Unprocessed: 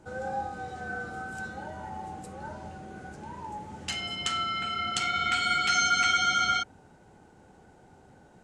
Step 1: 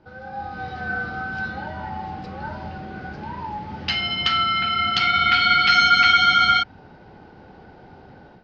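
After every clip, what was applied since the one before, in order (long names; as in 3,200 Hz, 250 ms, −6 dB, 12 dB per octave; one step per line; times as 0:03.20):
elliptic low-pass filter 4,900 Hz, stop band 50 dB
dynamic equaliser 460 Hz, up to −7 dB, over −49 dBFS, Q 1
automatic gain control gain up to 11 dB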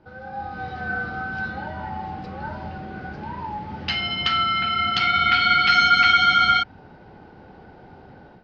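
high-shelf EQ 5,100 Hz −6.5 dB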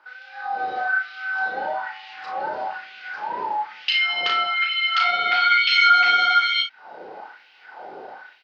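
auto-filter high-pass sine 1.1 Hz 450–2,800 Hz
downward compressor 1.5 to 1, threshold −37 dBFS, peak gain reduction 10.5 dB
on a send: ambience of single reflections 34 ms −4 dB, 58 ms −10.5 dB
on the sum: level +4.5 dB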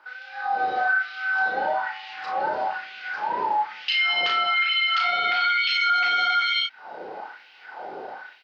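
brickwall limiter −16.5 dBFS, peak gain reduction 10.5 dB
level +2 dB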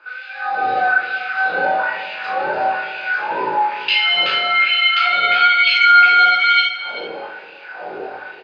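chorus effect 0.33 Hz, delay 17.5 ms, depth 4.7 ms
single-tap delay 386 ms −15.5 dB
convolution reverb RT60 0.85 s, pre-delay 14 ms, DRR 5 dB
level +1.5 dB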